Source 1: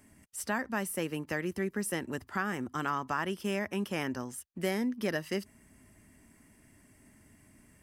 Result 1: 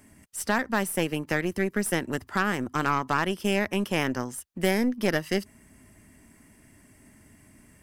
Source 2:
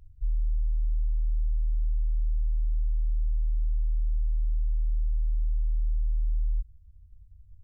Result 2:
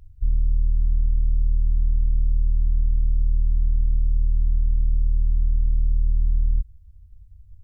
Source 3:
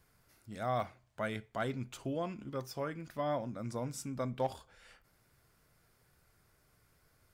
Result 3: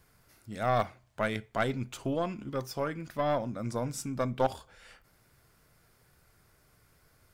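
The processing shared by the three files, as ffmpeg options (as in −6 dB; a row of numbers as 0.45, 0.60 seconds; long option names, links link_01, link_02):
-af "aeval=exprs='0.141*(cos(1*acos(clip(val(0)/0.141,-1,1)))-cos(1*PI/2))+0.0178*(cos(6*acos(clip(val(0)/0.141,-1,1)))-cos(6*PI/2))+0.00316*(cos(7*acos(clip(val(0)/0.141,-1,1)))-cos(7*PI/2))+0.00708*(cos(8*acos(clip(val(0)/0.141,-1,1)))-cos(8*PI/2))':channel_layout=same,volume=6.5dB"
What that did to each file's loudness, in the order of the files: +7.0, +7.0, +6.0 LU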